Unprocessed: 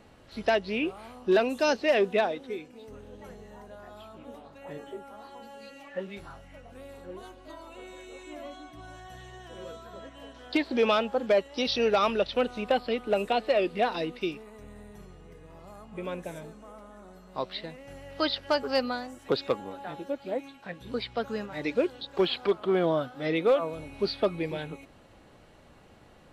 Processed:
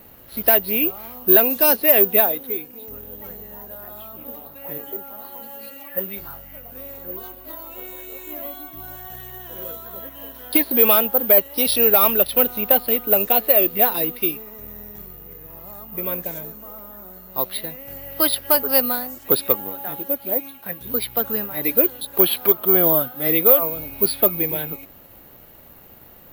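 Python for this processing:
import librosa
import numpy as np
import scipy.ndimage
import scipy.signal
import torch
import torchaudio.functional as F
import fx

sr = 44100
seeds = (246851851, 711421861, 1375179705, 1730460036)

y = (np.kron(x[::3], np.eye(3)[0]) * 3)[:len(x)]
y = y * 10.0 ** (4.5 / 20.0)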